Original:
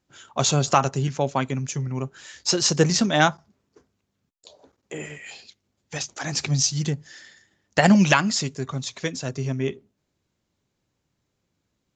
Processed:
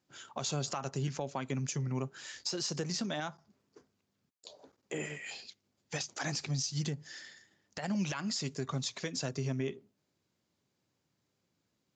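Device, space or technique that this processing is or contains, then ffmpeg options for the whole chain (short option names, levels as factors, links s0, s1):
broadcast voice chain: -af "highpass=110,deesser=0.3,acompressor=threshold=0.0501:ratio=5,equalizer=f=4800:t=o:w=0.23:g=4,alimiter=limit=0.0891:level=0:latency=1:release=113,volume=0.668"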